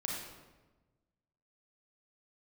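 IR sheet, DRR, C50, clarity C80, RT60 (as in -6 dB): -2.5 dB, 0.0 dB, 3.0 dB, 1.2 s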